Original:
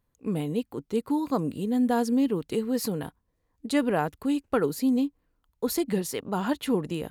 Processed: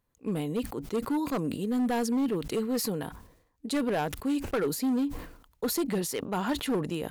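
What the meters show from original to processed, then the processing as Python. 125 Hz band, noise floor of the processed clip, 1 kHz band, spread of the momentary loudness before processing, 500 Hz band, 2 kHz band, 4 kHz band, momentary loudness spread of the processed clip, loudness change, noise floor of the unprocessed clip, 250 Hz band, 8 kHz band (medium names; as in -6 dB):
-2.0 dB, -69 dBFS, -2.5 dB, 8 LU, -2.5 dB, -1.0 dB, +1.0 dB, 6 LU, -2.5 dB, -76 dBFS, -3.0 dB, +1.5 dB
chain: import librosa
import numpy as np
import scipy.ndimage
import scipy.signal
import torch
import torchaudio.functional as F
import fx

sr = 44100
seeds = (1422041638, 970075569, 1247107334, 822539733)

y = fx.low_shelf(x, sr, hz=220.0, db=-4.5)
y = np.clip(y, -10.0 ** (-23.5 / 20.0), 10.0 ** (-23.5 / 20.0))
y = fx.sustainer(y, sr, db_per_s=81.0)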